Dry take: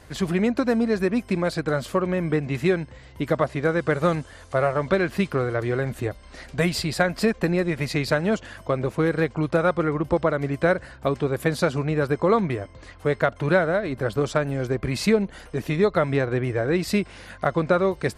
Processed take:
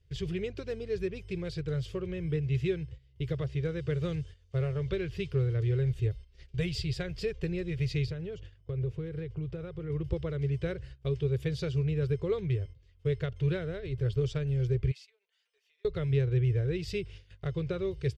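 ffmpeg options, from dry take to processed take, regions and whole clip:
-filter_complex "[0:a]asettb=1/sr,asplit=3[a][b][c];[a]atrim=end=8.064[d];[b]atrim=start=8.06:end=9.9,asetpts=PTS-STARTPTS,afade=t=in:d=0.004:c=qsin,afade=t=out:st=1.836:d=0.004:c=qsin,highshelf=f=2.3k:g=-8.5,acompressor=threshold=-25dB:ratio=2.5:attack=3.2:release=140:knee=1:detection=peak[e];[c]atrim=start=9.896[f];[d][e]acrossfade=d=0.004:c1=hsin:c2=qsin[g];[g][f]acrossfade=d=0.004:c1=qsin:c2=hsin,asettb=1/sr,asplit=3[h][i][j];[h]atrim=end=14.914[k];[i]atrim=start=14.91:end=15.85,asetpts=PTS-STARTPTS,afade=t=in:d=0.004:c=qsin,afade=t=out:st=0.936:d=0.004:c=qsin,highpass=f=780:w=0.5412,highpass=f=780:w=1.3066,aecho=1:1:4.5:0.4,atrim=end_sample=41454,acompressor=threshold=-44dB:ratio=3:attack=3.2:release=140:knee=1:detection=peak[l];[j]atrim=start=15.846[m];[k][l]acrossfade=d=0.004:c1=hsin:c2=qsin[n];[n][m]acrossfade=d=0.004:c1=qsin:c2=hsin,bandreject=f=4.1k:w=9.9,agate=range=-16dB:threshold=-39dB:ratio=16:detection=peak,firequalizer=gain_entry='entry(130,0);entry(230,-29);entry(410,-8);entry(630,-27);entry(900,-29);entry(2900,-8);entry(4500,-10);entry(9700,-25)':delay=0.05:min_phase=1,volume=2.5dB"

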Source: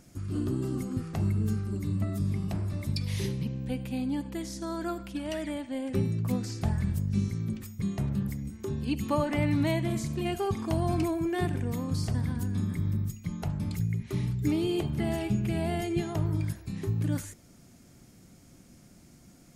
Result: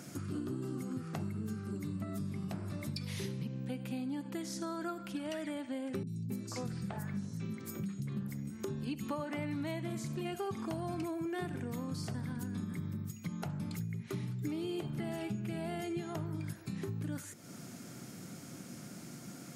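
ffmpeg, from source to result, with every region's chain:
-filter_complex "[0:a]asettb=1/sr,asplit=3[a][b][c];[a]atrim=end=6.034[d];[b]atrim=start=6.03:end=8.17,asetpts=PTS-STARTPTS,afade=t=in:d=0.004:c=qsin,afade=t=out:st=2.136:d=0.004:c=qsin,highpass=110,acrossover=split=290|4000[e][f][g];[g]adelay=40[h];[f]adelay=270[i];[e][i][h]amix=inputs=3:normalize=0,atrim=end_sample=94374[j];[c]atrim=start=8.166[k];[d][j]acrossfade=d=0.004:c1=hsin:c2=qsin[l];[l][k]acrossfade=d=0.004:c1=qsin:c2=hsin,highpass=f=120:w=0.5412,highpass=f=120:w=1.3066,equalizer=f=1.4k:w=3.8:g=5,acompressor=threshold=-47dB:ratio=4,volume=8dB"

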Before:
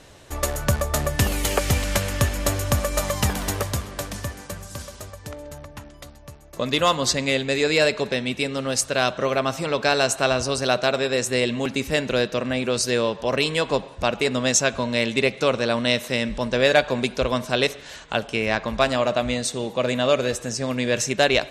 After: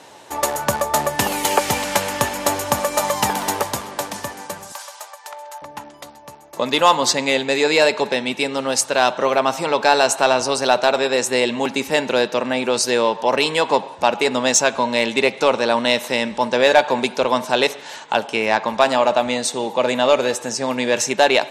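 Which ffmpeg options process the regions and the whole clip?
-filter_complex "[0:a]asettb=1/sr,asplit=3[a][b][c];[a]atrim=end=4.724[d];[b]atrim=start=4.72:end=5.62,asetpts=PTS-STARTPTS,afade=t=in:d=0.004:c=qsin,afade=t=out:st=0.896:d=0.004:c=qsin,highpass=f=680:w=0.5412,highpass=f=680:w=1.3066,aeval=exprs='clip(val(0),-1,0.0251)':c=same[e];[c]atrim=start=5.616[f];[d][e]acrossfade=d=0.004:c1=hsin:c2=qsin[g];[g][f]acrossfade=d=0.004:c1=qsin:c2=hsin,highpass=230,equalizer=f=880:t=o:w=0.3:g=12.5,acontrast=29,volume=-1dB"

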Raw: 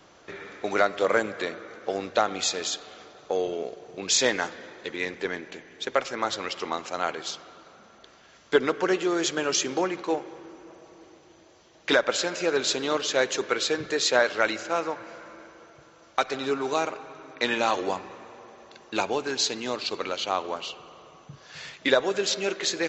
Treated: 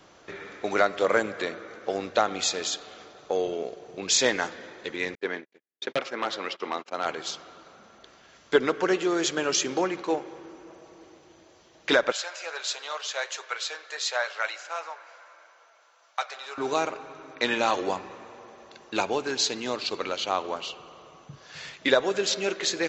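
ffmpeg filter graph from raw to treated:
-filter_complex "[0:a]asettb=1/sr,asplit=3[a][b][c];[a]atrim=end=5.154[d];[b]atrim=start=5.15:end=7.06,asetpts=PTS-STARTPTS,afade=t=in:d=0.004:c=qsin,afade=t=out:st=1.906:d=0.004:c=qsin,agate=range=-52dB:threshold=-38dB:ratio=16:release=100:detection=peak,aeval=exprs='0.133*(abs(mod(val(0)/0.133+3,4)-2)-1)':c=same,highpass=210,lowpass=4.4k[e];[c]atrim=start=7.056[f];[d][e]acrossfade=d=0.004:c1=hsin:c2=qsin[g];[g][f]acrossfade=d=0.004:c1=qsin:c2=hsin,asettb=1/sr,asplit=3[h][i][j];[h]atrim=end=12.124[k];[i]atrim=start=12.12:end=16.58,asetpts=PTS-STARTPTS,afade=t=in:d=0.004:c=qsin,afade=t=out:st=4.456:d=0.004:c=qsin,highpass=f=660:w=0.5412,highpass=f=660:w=1.3066,flanger=delay=6.4:depth=3.3:regen=-71:speed=1.5:shape=sinusoidal[l];[j]atrim=start=16.576[m];[k][l]acrossfade=d=0.004:c1=hsin:c2=qsin[n];[n][m]acrossfade=d=0.004:c1=qsin:c2=hsin"

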